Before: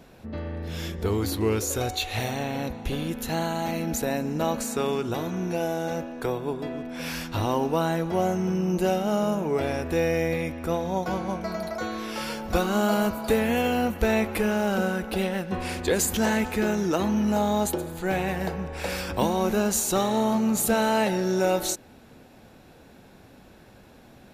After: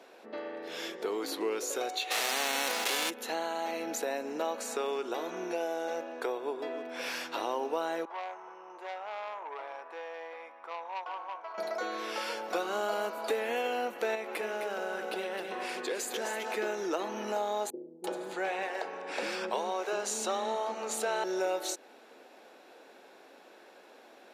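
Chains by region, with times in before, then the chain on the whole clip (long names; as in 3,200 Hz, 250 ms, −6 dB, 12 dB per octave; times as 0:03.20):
0:02.10–0:03.09: spectral envelope flattened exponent 0.3 + envelope flattener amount 70%
0:08.05–0:11.58: resonant band-pass 1,000 Hz, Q 3.5 + spectral tilt +2 dB per octave + saturating transformer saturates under 1,800 Hz
0:14.15–0:16.54: downward compressor 2 to 1, threshold −30 dBFS + single-tap delay 259 ms −6 dB
0:17.70–0:21.24: parametric band 13,000 Hz −12 dB 0.44 octaves + multiband delay without the direct sound lows, highs 340 ms, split 350 Hz
whole clip: high-pass filter 360 Hz 24 dB per octave; high-shelf EQ 9,200 Hz −11.5 dB; downward compressor 2 to 1, threshold −33 dBFS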